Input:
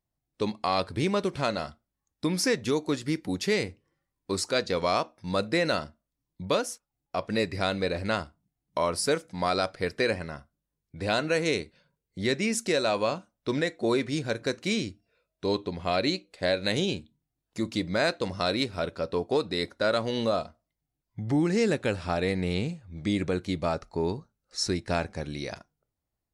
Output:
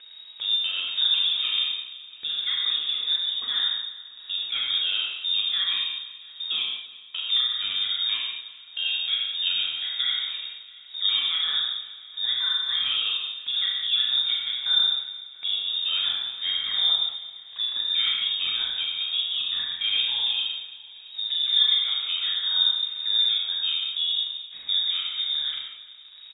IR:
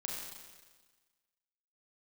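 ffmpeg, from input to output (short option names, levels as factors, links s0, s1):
-filter_complex "[0:a]aemphasis=mode=reproduction:type=riaa,bandreject=f=60:t=h:w=6,bandreject=f=120:t=h:w=6,bandreject=f=180:t=h:w=6,adynamicequalizer=threshold=0.0141:dfrequency=410:dqfactor=2.1:tfrequency=410:tqfactor=2.1:attack=5:release=100:ratio=0.375:range=1.5:mode=cutabove:tftype=bell,acrossover=split=110[s0][s1];[s0]acompressor=threshold=0.00794:ratio=6[s2];[s1]alimiter=limit=0.141:level=0:latency=1:release=141[s3];[s2][s3]amix=inputs=2:normalize=0,acompressor=mode=upward:threshold=0.0224:ratio=2.5,aphaser=in_gain=1:out_gain=1:delay=3:decay=0.45:speed=1.9:type=triangular,acrusher=bits=7:mix=0:aa=0.000001,aecho=1:1:341|682|1023|1364|1705:0.126|0.0692|0.0381|0.0209|0.0115[s4];[1:a]atrim=start_sample=2205,afade=t=out:st=0.29:d=0.01,atrim=end_sample=13230[s5];[s4][s5]afir=irnorm=-1:irlink=0,lowpass=f=3200:t=q:w=0.5098,lowpass=f=3200:t=q:w=0.6013,lowpass=f=3200:t=q:w=0.9,lowpass=f=3200:t=q:w=2.563,afreqshift=-3800"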